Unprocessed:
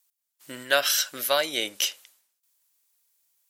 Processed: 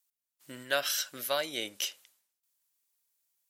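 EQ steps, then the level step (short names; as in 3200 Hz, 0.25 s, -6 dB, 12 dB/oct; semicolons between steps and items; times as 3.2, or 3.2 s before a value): low shelf 200 Hz +8.5 dB; -8.0 dB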